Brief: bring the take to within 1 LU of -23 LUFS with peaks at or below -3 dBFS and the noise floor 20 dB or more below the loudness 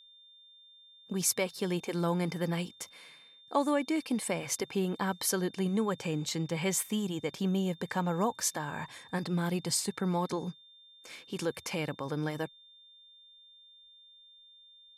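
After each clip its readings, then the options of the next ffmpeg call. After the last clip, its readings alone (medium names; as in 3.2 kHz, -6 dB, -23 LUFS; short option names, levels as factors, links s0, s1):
steady tone 3.6 kHz; tone level -55 dBFS; loudness -32.5 LUFS; peak level -15.0 dBFS; loudness target -23.0 LUFS
-> -af "bandreject=f=3600:w=30"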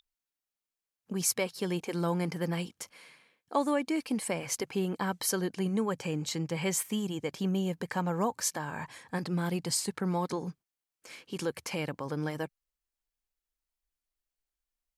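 steady tone not found; loudness -32.5 LUFS; peak level -15.0 dBFS; loudness target -23.0 LUFS
-> -af "volume=2.99"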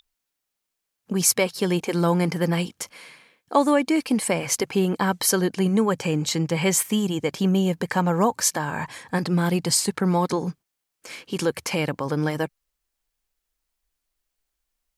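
loudness -23.0 LUFS; peak level -5.5 dBFS; noise floor -82 dBFS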